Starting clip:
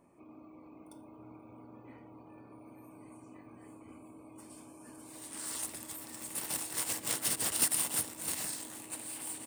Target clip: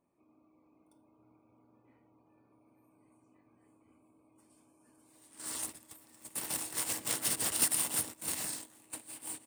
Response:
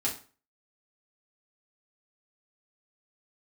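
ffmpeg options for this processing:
-af "agate=range=-14dB:threshold=-41dB:ratio=16:detection=peak"

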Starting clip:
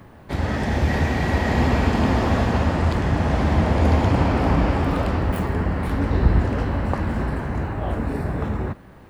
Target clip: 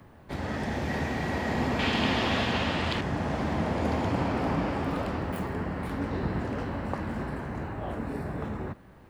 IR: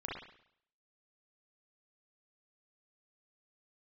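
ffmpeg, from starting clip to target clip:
-filter_complex "[0:a]asettb=1/sr,asplit=3[link_01][link_02][link_03];[link_01]atrim=end=1.794[link_04];[link_02]atrim=start=1.79:end=3.01,asetpts=PTS-STARTPTS,afade=type=in:duration=0.004:curve=qsin,afade=type=out:start_time=1.216:duration=0.004:curve=qsin,equalizer=frequency=3200:width=1:gain=14[link_05];[link_03]atrim=start=3.006[link_06];[link_04][link_05]acrossfade=duration=0.004:curve1=hsin:curve2=qsin[link_07];[link_07][link_06]acrossfade=duration=0.004:curve1=qsin:curve2=hsin,acrossover=split=110|2900[link_08][link_09][link_10];[link_08]acompressor=threshold=-34dB:ratio=6[link_11];[link_11][link_09][link_10]amix=inputs=3:normalize=0,volume=-7dB"

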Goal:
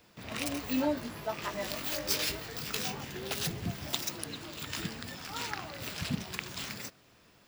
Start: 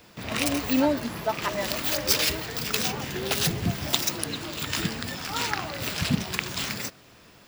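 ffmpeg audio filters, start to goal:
ffmpeg -i in.wav -filter_complex "[0:a]asettb=1/sr,asplit=3[link_01][link_02][link_03];[link_01]atrim=end=0.684[link_04];[link_02]atrim=start=0.68:end=3.05,asetpts=PTS-STARTPTS,afade=type=in:duration=0.004:curve=qsin,afade=type=out:start_time=2.366:duration=0.004:curve=qsin,asplit=2[link_05][link_06];[link_06]adelay=20,volume=-6dB[link_07];[link_05][link_07]amix=inputs=2:normalize=0,atrim=end_sample=104517[link_08];[link_03]atrim=start=3.046[link_09];[link_04][link_08]acrossfade=duration=0.004:curve1=hsin:curve2=qsin[link_10];[link_10][link_09]acrossfade=duration=0.004:curve1=qsin:curve2=hsin,volume=-9dB" out.wav

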